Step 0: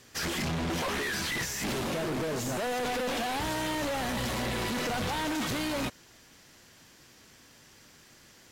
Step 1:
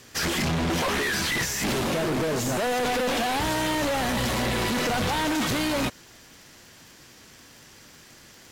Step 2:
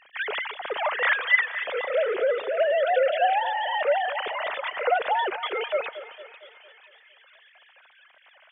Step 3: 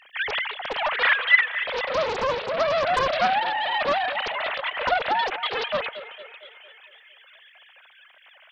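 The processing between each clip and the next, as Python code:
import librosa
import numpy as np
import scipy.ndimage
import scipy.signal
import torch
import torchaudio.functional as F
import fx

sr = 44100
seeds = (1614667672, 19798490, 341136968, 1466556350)

y1 = fx.dmg_crackle(x, sr, seeds[0], per_s=51.0, level_db=-45.0)
y1 = F.gain(torch.from_numpy(y1), 6.0).numpy()
y2 = fx.sine_speech(y1, sr)
y2 = fx.echo_split(y2, sr, split_hz=2000.0, low_ms=228, high_ms=498, feedback_pct=52, wet_db=-13.5)
y3 = fx.high_shelf(y2, sr, hz=2900.0, db=10.0)
y3 = fx.doppler_dist(y3, sr, depth_ms=0.77)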